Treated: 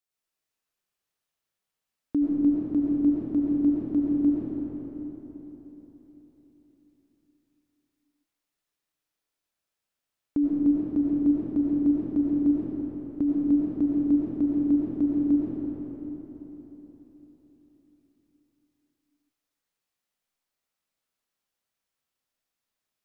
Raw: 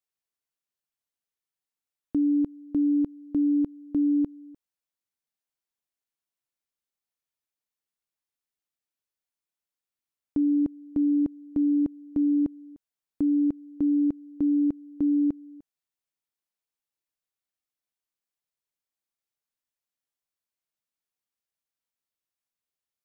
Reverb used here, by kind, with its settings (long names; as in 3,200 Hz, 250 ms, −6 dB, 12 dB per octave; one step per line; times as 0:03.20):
comb and all-pass reverb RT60 4.2 s, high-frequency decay 0.65×, pre-delay 55 ms, DRR −7 dB